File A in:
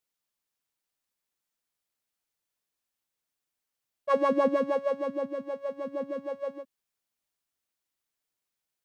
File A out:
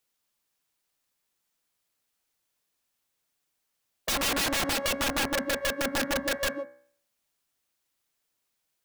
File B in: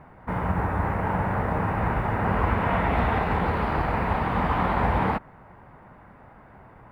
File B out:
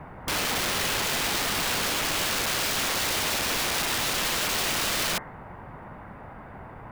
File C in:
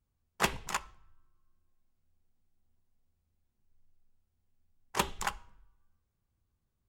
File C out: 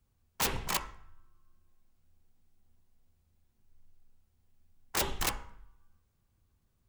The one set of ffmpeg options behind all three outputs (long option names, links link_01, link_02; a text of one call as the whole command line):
ffmpeg -i in.wav -filter_complex "[0:a]acrossover=split=280|750[link_01][link_02][link_03];[link_01]acompressor=threshold=-34dB:ratio=4[link_04];[link_02]acompressor=threshold=-30dB:ratio=4[link_05];[link_03]acompressor=threshold=-30dB:ratio=4[link_06];[link_04][link_05][link_06]amix=inputs=3:normalize=0,aeval=exprs='(mod(28.2*val(0)+1,2)-1)/28.2':channel_layout=same,bandreject=frequency=63.73:width_type=h:width=4,bandreject=frequency=127.46:width_type=h:width=4,bandreject=frequency=191.19:width_type=h:width=4,bandreject=frequency=254.92:width_type=h:width=4,bandreject=frequency=318.65:width_type=h:width=4,bandreject=frequency=382.38:width_type=h:width=4,bandreject=frequency=446.11:width_type=h:width=4,bandreject=frequency=509.84:width_type=h:width=4,bandreject=frequency=573.57:width_type=h:width=4,bandreject=frequency=637.3:width_type=h:width=4,bandreject=frequency=701.03:width_type=h:width=4,bandreject=frequency=764.76:width_type=h:width=4,bandreject=frequency=828.49:width_type=h:width=4,bandreject=frequency=892.22:width_type=h:width=4,bandreject=frequency=955.95:width_type=h:width=4,bandreject=frequency=1019.68:width_type=h:width=4,bandreject=frequency=1083.41:width_type=h:width=4,bandreject=frequency=1147.14:width_type=h:width=4,bandreject=frequency=1210.87:width_type=h:width=4,bandreject=frequency=1274.6:width_type=h:width=4,bandreject=frequency=1338.33:width_type=h:width=4,bandreject=frequency=1402.06:width_type=h:width=4,bandreject=frequency=1465.79:width_type=h:width=4,bandreject=frequency=1529.52:width_type=h:width=4,bandreject=frequency=1593.25:width_type=h:width=4,bandreject=frequency=1656.98:width_type=h:width=4,bandreject=frequency=1720.71:width_type=h:width=4,bandreject=frequency=1784.44:width_type=h:width=4,bandreject=frequency=1848.17:width_type=h:width=4,bandreject=frequency=1911.9:width_type=h:width=4,bandreject=frequency=1975.63:width_type=h:width=4,bandreject=frequency=2039.36:width_type=h:width=4,bandreject=frequency=2103.09:width_type=h:width=4,bandreject=frequency=2166.82:width_type=h:width=4,bandreject=frequency=2230.55:width_type=h:width=4,volume=7dB" out.wav